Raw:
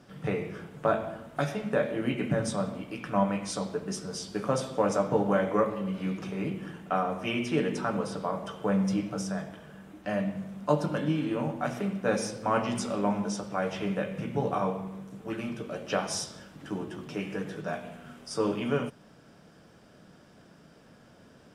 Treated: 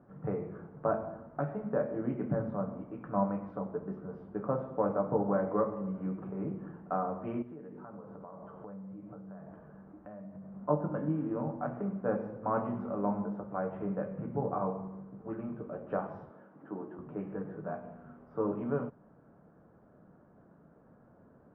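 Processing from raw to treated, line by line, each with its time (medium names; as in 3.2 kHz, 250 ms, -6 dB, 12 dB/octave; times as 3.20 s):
7.42–10.55 s: compression 8:1, threshold -39 dBFS
16.30–16.99 s: high-pass 230 Hz
whole clip: low-pass 1.3 kHz 24 dB/octave; trim -4 dB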